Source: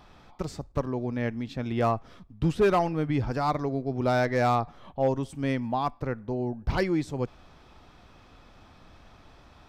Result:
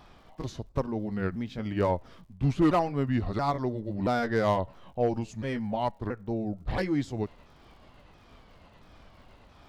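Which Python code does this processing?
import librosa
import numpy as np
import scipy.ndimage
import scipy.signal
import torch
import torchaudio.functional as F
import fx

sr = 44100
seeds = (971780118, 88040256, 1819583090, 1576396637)

y = fx.pitch_ramps(x, sr, semitones=-4.5, every_ms=678)
y = fx.dmg_crackle(y, sr, seeds[0], per_s=110.0, level_db=-58.0)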